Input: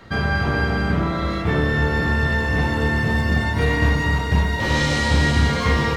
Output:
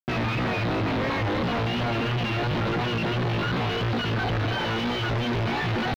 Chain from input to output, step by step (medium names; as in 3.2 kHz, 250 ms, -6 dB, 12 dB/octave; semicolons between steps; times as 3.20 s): rattle on loud lows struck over -26 dBFS, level -15 dBFS; high-pass 45 Hz 12 dB/octave; reverb removal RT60 1.1 s; peak limiter -13.5 dBFS, peak gain reduction 7 dB; integer overflow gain 15 dB; pitch shift +8 st; vibrato 2.9 Hz 58 cents; Schmitt trigger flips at -33.5 dBFS; distance through air 290 m